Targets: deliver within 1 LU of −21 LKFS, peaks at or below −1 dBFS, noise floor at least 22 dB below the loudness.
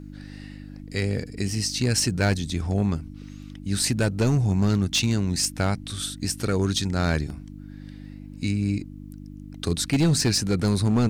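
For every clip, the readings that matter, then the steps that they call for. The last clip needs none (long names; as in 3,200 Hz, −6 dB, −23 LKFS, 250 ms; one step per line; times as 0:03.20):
share of clipped samples 1.5%; peaks flattened at −15.5 dBFS; mains hum 50 Hz; hum harmonics up to 300 Hz; level of the hum −40 dBFS; integrated loudness −24.5 LKFS; sample peak −15.5 dBFS; target loudness −21.0 LKFS
→ clipped peaks rebuilt −15.5 dBFS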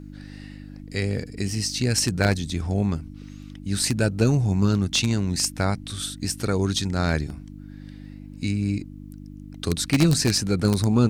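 share of clipped samples 0.0%; mains hum 50 Hz; hum harmonics up to 300 Hz; level of the hum −39 dBFS
→ hum removal 50 Hz, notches 6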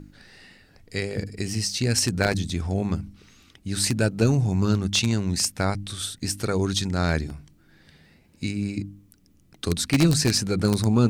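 mains hum none found; integrated loudness −24.5 LKFS; sample peak −6.5 dBFS; target loudness −21.0 LKFS
→ level +3.5 dB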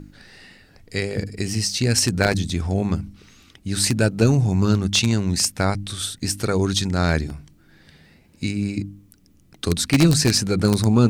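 integrated loudness −21.0 LKFS; sample peak −3.0 dBFS; background noise floor −55 dBFS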